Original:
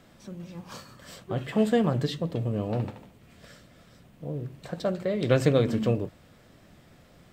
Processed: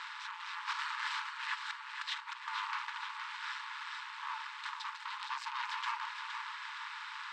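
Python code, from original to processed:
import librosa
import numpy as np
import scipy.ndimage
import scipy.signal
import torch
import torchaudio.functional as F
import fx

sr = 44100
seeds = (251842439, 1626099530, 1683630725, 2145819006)

y = fx.bin_compress(x, sr, power=0.4)
y = fx.dereverb_blind(y, sr, rt60_s=0.56)
y = fx.over_compress(y, sr, threshold_db=-30.0, ratio=-1.0, at=(0.67, 2.48))
y = fx.peak_eq(y, sr, hz=1300.0, db=-9.0, octaves=2.7, at=(4.69, 5.6))
y = fx.tube_stage(y, sr, drive_db=24.0, bias=0.8)
y = np.clip(y, -10.0 ** (-26.5 / 20.0), 10.0 ** (-26.5 / 20.0))
y = fx.brickwall_highpass(y, sr, low_hz=850.0)
y = fx.air_absorb(y, sr, metres=160.0)
y = fx.echo_feedback(y, sr, ms=466, feedback_pct=53, wet_db=-7)
y = y * 10.0 ** (3.5 / 20.0)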